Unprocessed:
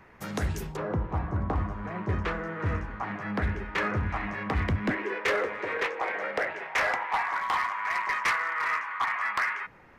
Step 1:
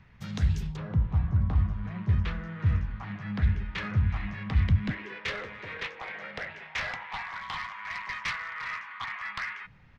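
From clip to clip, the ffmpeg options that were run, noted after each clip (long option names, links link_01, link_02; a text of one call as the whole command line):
ffmpeg -i in.wav -af "firequalizer=gain_entry='entry(140,0);entry(330,-19);entry(3500,-4);entry(10000,-22)':delay=0.05:min_phase=1,volume=5.5dB" out.wav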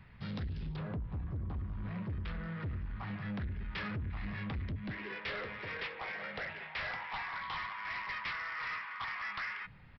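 ffmpeg -i in.wav -af "acompressor=threshold=-30dB:ratio=6,aresample=11025,asoftclip=type=tanh:threshold=-34dB,aresample=44100" out.wav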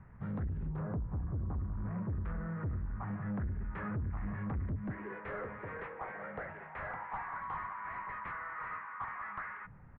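ffmpeg -i in.wav -af "lowpass=frequency=1500:width=0.5412,lowpass=frequency=1500:width=1.3066,volume=2dB" out.wav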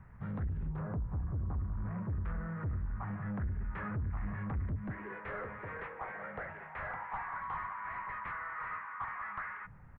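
ffmpeg -i in.wav -af "equalizer=frequency=310:width_type=o:width=2.4:gain=-4.5,volume=2dB" out.wav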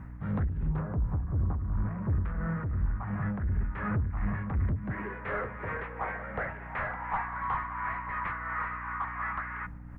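ffmpeg -i in.wav -af "tremolo=f=2.8:d=0.52,aeval=exprs='val(0)+0.00251*(sin(2*PI*60*n/s)+sin(2*PI*2*60*n/s)/2+sin(2*PI*3*60*n/s)/3+sin(2*PI*4*60*n/s)/4+sin(2*PI*5*60*n/s)/5)':channel_layout=same,volume=8.5dB" out.wav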